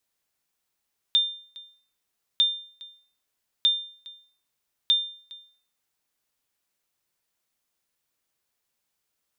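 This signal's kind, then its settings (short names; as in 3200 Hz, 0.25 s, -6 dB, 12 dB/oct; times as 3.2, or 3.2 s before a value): sonar ping 3600 Hz, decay 0.48 s, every 1.25 s, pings 4, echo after 0.41 s, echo -22.5 dB -13.5 dBFS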